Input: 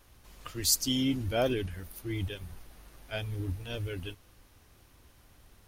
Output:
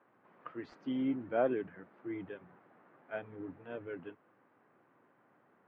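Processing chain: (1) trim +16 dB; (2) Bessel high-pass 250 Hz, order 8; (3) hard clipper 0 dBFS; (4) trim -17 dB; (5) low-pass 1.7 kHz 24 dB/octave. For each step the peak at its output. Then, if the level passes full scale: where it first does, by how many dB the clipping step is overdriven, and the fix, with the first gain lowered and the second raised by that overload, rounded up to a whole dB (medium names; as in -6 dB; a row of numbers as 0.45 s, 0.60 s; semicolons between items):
+4.0 dBFS, +4.0 dBFS, 0.0 dBFS, -17.0 dBFS, -19.5 dBFS; step 1, 4.0 dB; step 1 +12 dB, step 4 -13 dB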